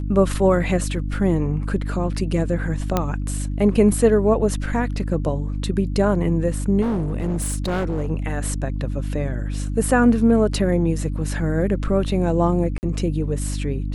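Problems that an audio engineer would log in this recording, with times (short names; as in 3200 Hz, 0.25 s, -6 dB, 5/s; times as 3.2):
hum 50 Hz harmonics 6 -25 dBFS
2.97 pop -6 dBFS
6.81–8.11 clipped -19 dBFS
12.78–12.83 gap 49 ms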